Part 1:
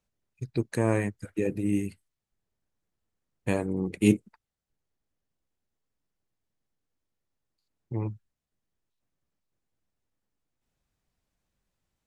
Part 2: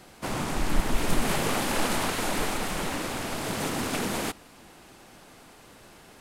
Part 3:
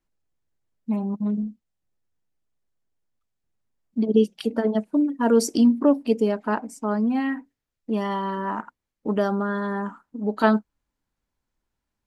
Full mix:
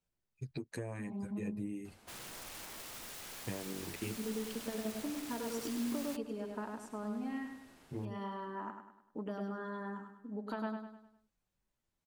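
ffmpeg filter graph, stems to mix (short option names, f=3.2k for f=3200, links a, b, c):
-filter_complex "[0:a]asplit=2[a][b];[b]adelay=9.1,afreqshift=1.5[c];[a][c]amix=inputs=2:normalize=1,volume=-3dB[d];[1:a]acrossover=split=260|2700[e][f][g];[e]acompressor=threshold=-42dB:ratio=4[h];[f]acompressor=threshold=-35dB:ratio=4[i];[g]acompressor=threshold=-38dB:ratio=4[j];[h][i][j]amix=inputs=3:normalize=0,aeval=exprs='(mod(35.5*val(0)+1,2)-1)/35.5':c=same,adelay=1850,volume=-11.5dB[k];[2:a]adelay=100,volume=-13.5dB,asplit=2[l][m];[m]volume=-9.5dB[n];[d][l]amix=inputs=2:normalize=0,acompressor=threshold=-37dB:ratio=20,volume=0dB[o];[n]aecho=0:1:101|202|303|404|505|606:1|0.44|0.194|0.0852|0.0375|0.0165[p];[k][o][p]amix=inputs=3:normalize=0"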